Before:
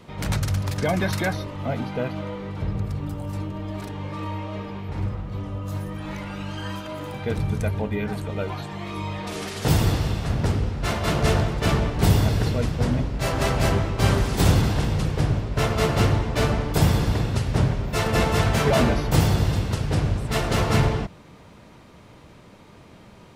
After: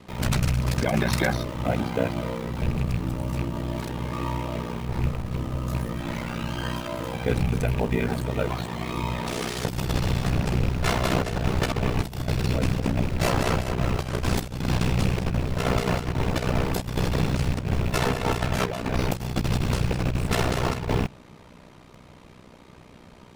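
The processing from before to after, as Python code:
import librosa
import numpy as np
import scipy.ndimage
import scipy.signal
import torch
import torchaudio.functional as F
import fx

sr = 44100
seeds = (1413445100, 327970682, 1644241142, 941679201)

p1 = fx.rattle_buzz(x, sr, strikes_db=-23.0, level_db=-28.0)
p2 = fx.quant_dither(p1, sr, seeds[0], bits=6, dither='none')
p3 = p1 + (p2 * librosa.db_to_amplitude(-8.5))
p4 = p3 * np.sin(2.0 * np.pi * 31.0 * np.arange(len(p3)) / sr)
y = fx.over_compress(p4, sr, threshold_db=-23.0, ratio=-0.5)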